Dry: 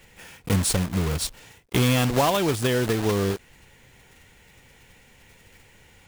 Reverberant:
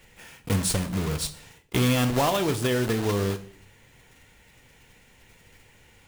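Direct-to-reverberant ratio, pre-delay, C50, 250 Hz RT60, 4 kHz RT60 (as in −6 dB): 9.0 dB, 3 ms, 15.0 dB, 0.70 s, 0.50 s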